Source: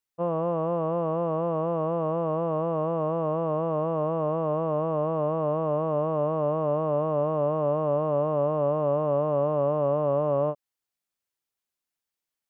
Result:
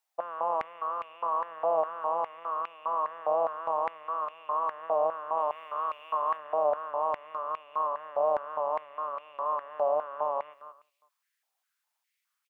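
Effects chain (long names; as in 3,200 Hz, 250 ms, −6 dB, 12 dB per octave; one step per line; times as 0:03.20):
0:05.37–0:06.37: high-shelf EQ 2,100 Hz +10.5 dB
brickwall limiter −24.5 dBFS, peak gain reduction 10 dB
repeating echo 181 ms, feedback 24%, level −11 dB
high-pass on a step sequencer 4.9 Hz 730–2,500 Hz
level +3.5 dB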